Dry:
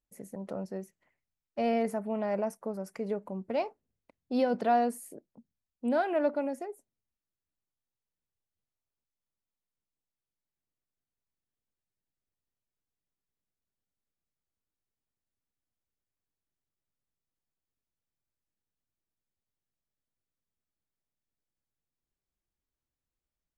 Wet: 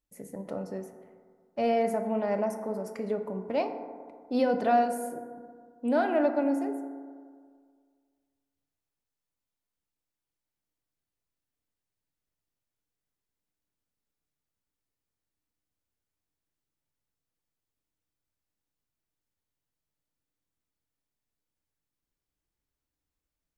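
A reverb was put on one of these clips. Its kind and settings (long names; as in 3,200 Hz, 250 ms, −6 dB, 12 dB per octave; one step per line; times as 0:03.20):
feedback delay network reverb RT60 1.9 s, low-frequency decay 1×, high-frequency decay 0.3×, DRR 5.5 dB
level +1.5 dB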